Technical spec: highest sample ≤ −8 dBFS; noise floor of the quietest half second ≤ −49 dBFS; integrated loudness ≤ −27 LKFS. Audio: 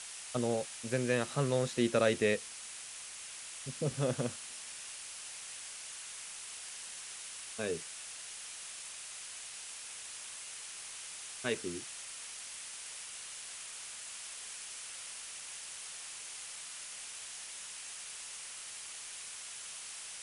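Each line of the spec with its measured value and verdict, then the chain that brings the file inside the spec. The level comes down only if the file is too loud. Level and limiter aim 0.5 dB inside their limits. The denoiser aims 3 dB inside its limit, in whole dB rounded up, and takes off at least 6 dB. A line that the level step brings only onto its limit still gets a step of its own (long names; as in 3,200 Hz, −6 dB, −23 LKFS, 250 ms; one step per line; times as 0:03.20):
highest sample −15.5 dBFS: in spec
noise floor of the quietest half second −47 dBFS: out of spec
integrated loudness −39.0 LKFS: in spec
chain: broadband denoise 6 dB, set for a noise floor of −47 dBFS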